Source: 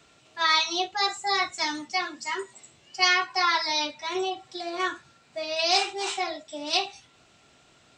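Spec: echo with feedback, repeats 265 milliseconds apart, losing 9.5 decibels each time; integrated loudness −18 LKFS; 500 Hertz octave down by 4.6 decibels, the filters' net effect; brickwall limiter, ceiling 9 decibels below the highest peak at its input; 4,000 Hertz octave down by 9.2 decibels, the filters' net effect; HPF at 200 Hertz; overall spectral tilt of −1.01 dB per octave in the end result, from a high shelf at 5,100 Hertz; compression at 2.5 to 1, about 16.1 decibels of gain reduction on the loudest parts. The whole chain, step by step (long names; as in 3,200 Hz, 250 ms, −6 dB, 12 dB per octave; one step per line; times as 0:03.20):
high-pass filter 200 Hz
parametric band 500 Hz −7 dB
parametric band 4,000 Hz −8.5 dB
high-shelf EQ 5,100 Hz −6 dB
downward compressor 2.5 to 1, threshold −47 dBFS
brickwall limiter −36 dBFS
repeating echo 265 ms, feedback 33%, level −9.5 dB
level +28 dB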